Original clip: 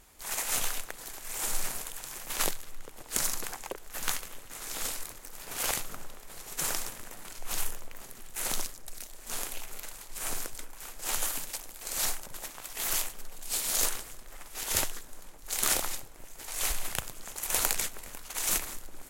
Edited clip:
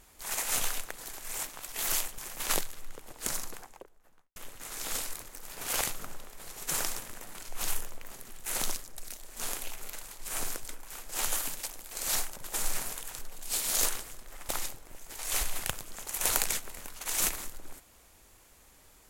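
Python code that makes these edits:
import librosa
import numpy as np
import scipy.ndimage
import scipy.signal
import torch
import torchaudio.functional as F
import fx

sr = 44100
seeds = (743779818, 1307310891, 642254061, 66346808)

y = fx.studio_fade_out(x, sr, start_s=2.8, length_s=1.46)
y = fx.edit(y, sr, fx.swap(start_s=1.43, length_s=0.65, other_s=12.44, other_length_s=0.75),
    fx.cut(start_s=14.49, length_s=1.29), tone=tone)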